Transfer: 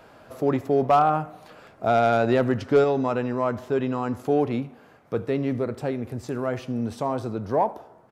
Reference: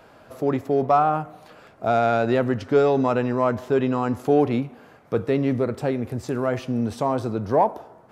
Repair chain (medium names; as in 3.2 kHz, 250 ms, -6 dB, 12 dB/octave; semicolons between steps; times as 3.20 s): clip repair -11 dBFS; inverse comb 77 ms -22 dB; gain correction +3.5 dB, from 2.84 s